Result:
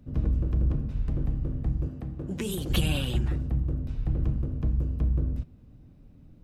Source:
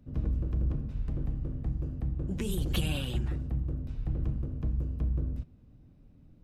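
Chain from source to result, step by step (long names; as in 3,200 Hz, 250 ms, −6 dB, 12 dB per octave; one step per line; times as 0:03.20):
0:01.88–0:02.70: high-pass filter 200 Hz 6 dB per octave
level +4.5 dB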